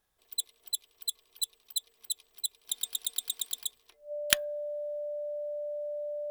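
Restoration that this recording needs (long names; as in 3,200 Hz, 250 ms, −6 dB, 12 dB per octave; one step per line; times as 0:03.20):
notch filter 590 Hz, Q 30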